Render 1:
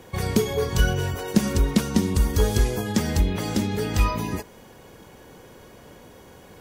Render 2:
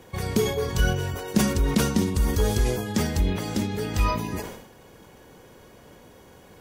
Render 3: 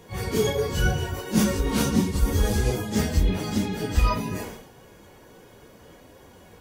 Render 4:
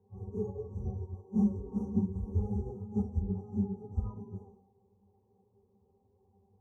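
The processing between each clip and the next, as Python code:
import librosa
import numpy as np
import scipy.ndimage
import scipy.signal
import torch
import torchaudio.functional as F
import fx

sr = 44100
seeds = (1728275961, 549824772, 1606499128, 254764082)

y1 = fx.sustainer(x, sr, db_per_s=66.0)
y1 = y1 * librosa.db_to_amplitude(-3.0)
y2 = fx.phase_scramble(y1, sr, seeds[0], window_ms=100)
y3 = fx.brickwall_bandstop(y2, sr, low_hz=1400.0, high_hz=5600.0)
y3 = fx.octave_resonator(y3, sr, note='G', decay_s=0.12)
y3 = fx.upward_expand(y3, sr, threshold_db=-42.0, expansion=1.5)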